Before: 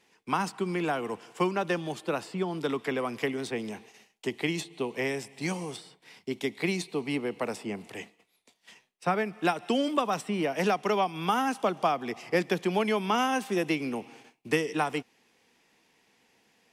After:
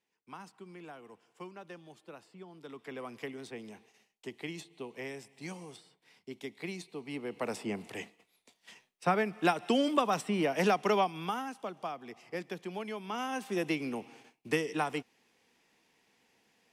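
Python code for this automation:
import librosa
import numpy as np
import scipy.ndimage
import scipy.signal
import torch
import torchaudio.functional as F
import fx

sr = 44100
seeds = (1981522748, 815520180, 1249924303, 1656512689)

y = fx.gain(x, sr, db=fx.line((2.6, -19.0), (3.02, -11.0), (7.05, -11.0), (7.58, -1.0), (10.99, -1.0), (11.51, -12.5), (13.03, -12.5), (13.62, -4.0)))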